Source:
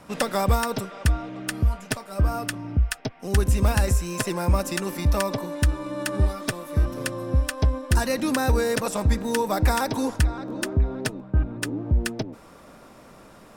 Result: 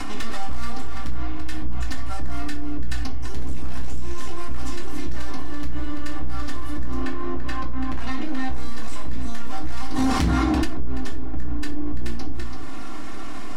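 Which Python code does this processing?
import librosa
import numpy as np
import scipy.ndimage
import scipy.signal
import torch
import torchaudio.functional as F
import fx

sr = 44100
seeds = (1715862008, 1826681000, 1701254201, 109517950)

p1 = fx.tracing_dist(x, sr, depth_ms=0.13)
p2 = np.maximum(p1, 0.0)
p3 = scipy.signal.sosfilt(scipy.signal.butter(2, 8600.0, 'lowpass', fs=sr, output='sos'), p2)
p4 = fx.peak_eq(p3, sr, hz=530.0, db=-10.0, octaves=0.7)
p5 = p4 + 0.73 * np.pad(p4, (int(2.8 * sr / 1000.0), 0))[:len(p4)]
p6 = p5 + fx.echo_single(p5, sr, ms=335, db=-15.0, dry=0)
p7 = 10.0 ** (-22.5 / 20.0) * np.tanh(p6 / 10.0 ** (-22.5 / 20.0))
p8 = fx.bass_treble(p7, sr, bass_db=-6, treble_db=-10, at=(6.96, 8.5))
p9 = fx.highpass(p8, sr, hz=58.0, slope=12, at=(9.92, 10.63))
p10 = fx.room_shoebox(p9, sr, seeds[0], volume_m3=320.0, walls='furnished', distance_m=2.1)
p11 = fx.env_flatten(p10, sr, amount_pct=70)
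y = p11 * 10.0 ** (-6.0 / 20.0)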